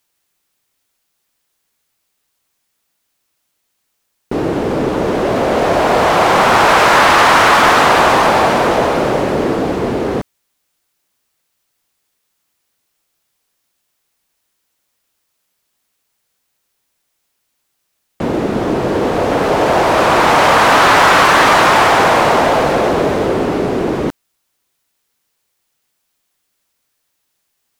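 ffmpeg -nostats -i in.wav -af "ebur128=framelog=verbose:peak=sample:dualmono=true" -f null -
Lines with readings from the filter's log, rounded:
Integrated loudness:
  I:          -8.8 LUFS
  Threshold: -22.2 LUFS
Loudness range:
  LRA:        15.5 LU
  Threshold: -31.8 LUFS
  LRA low:   -22.1 LUFS
  LRA high:   -6.6 LUFS
Sample peak:
  Peak:       -2.2 dBFS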